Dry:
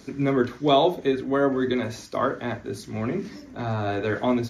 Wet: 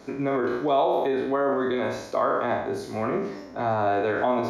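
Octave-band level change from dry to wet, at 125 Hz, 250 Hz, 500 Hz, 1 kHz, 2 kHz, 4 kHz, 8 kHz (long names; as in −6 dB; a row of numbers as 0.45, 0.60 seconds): −6.5 dB, −3.5 dB, +0.5 dB, +2.5 dB, +0.5 dB, −8.0 dB, can't be measured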